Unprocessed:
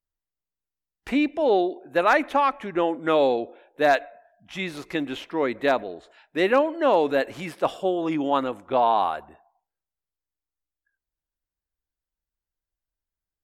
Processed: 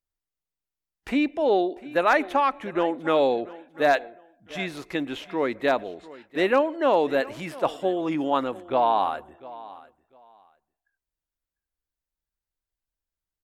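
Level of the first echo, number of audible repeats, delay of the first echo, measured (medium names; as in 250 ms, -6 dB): -19.0 dB, 2, 698 ms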